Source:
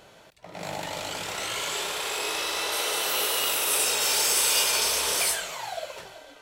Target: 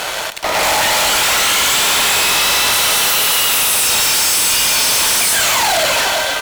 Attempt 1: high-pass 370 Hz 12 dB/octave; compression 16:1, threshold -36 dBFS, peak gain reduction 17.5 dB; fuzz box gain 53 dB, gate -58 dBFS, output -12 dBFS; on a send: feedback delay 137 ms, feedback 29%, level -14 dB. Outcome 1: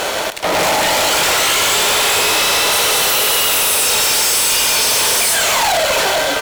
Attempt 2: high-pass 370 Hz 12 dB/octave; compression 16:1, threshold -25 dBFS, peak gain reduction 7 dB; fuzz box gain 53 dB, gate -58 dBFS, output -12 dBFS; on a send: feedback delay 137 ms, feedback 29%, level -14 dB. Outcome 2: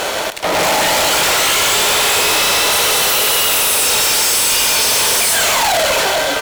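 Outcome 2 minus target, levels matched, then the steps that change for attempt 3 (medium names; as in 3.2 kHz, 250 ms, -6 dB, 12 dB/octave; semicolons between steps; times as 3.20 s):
500 Hz band +4.0 dB
change: high-pass 790 Hz 12 dB/octave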